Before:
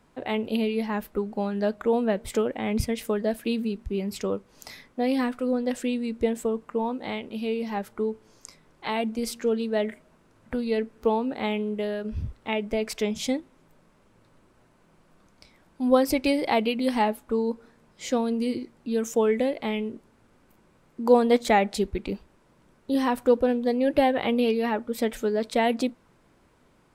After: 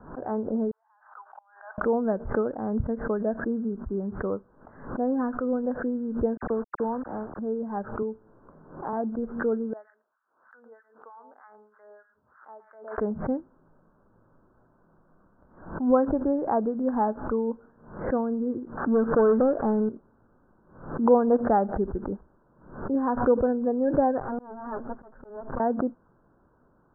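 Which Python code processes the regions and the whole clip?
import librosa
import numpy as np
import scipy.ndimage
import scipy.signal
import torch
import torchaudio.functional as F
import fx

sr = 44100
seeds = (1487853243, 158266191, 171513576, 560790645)

y = fx.chain(x, sr, fx.steep_highpass(hz=780.0, slope=48),
    fx.peak_eq(hz=5200.0, db=6.0, octaves=1.7),
    fx.gate_flip(shuts_db=-31.0, range_db=-30), at=(0.71, 1.78))
y = fx.chain(y, sr, fx.hum_notches(base_hz=50, count=3),
    fx.quant_dither(seeds[0], bits=6, dither='none'),
    fx.dispersion(late='lows', ms=54.0, hz=2700.0), at=(6.37, 7.39))
y = fx.chain(y, sr, fx.high_shelf(hz=2000.0, db=-11.5),
    fx.band_squash(depth_pct=70), at=(8.02, 8.93))
y = fx.chain(y, sr, fx.highpass(hz=1400.0, slope=12),
    fx.echo_single(ms=113, db=-12.0),
    fx.harmonic_tremolo(hz=3.2, depth_pct=100, crossover_hz=1100.0), at=(9.73, 12.98))
y = fx.chain(y, sr, fx.crossing_spikes(level_db=-30.0),
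    fx.leveller(passes=2),
    fx.peak_eq(hz=2400.0, db=-13.0, octaves=0.35), at=(18.77, 19.89))
y = fx.chain(y, sr, fx.lower_of_two(delay_ms=7.6),
    fx.auto_swell(attack_ms=438.0), at=(24.2, 25.6))
y = scipy.signal.sosfilt(scipy.signal.butter(16, 1600.0, 'lowpass', fs=sr, output='sos'), y)
y = fx.pre_swell(y, sr, db_per_s=100.0)
y = y * 10.0 ** (-1.5 / 20.0)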